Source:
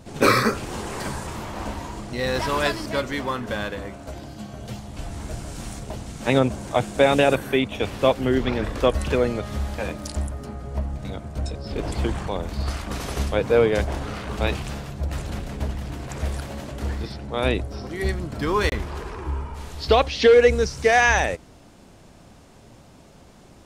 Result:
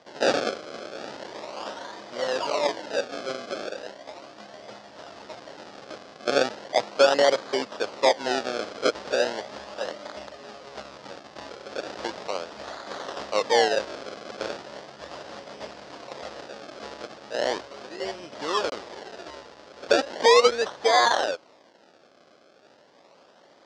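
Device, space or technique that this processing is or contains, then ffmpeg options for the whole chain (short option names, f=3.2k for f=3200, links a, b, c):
circuit-bent sampling toy: -af "acrusher=samples=32:mix=1:aa=0.000001:lfo=1:lforange=32:lforate=0.37,highpass=460,equalizer=f=570:t=q:w=4:g=5,equalizer=f=2.3k:t=q:w=4:g=-4,equalizer=f=4.9k:t=q:w=4:g=4,lowpass=f=5.8k:w=0.5412,lowpass=f=5.8k:w=1.3066,highshelf=f=7.7k:g=4.5,volume=-2dB"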